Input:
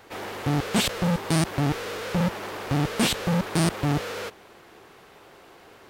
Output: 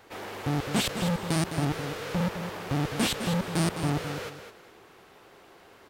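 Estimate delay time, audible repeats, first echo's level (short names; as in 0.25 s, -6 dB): 0.209 s, 2, -9.0 dB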